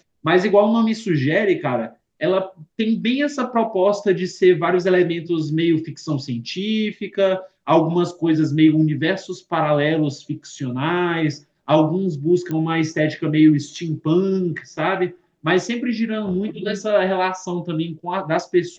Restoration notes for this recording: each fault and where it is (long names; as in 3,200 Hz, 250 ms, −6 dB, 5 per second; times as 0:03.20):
0:12.51: click −15 dBFS